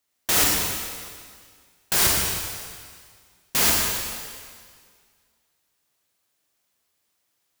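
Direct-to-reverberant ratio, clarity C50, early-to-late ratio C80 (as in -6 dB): -2.5 dB, -1.0 dB, 1.0 dB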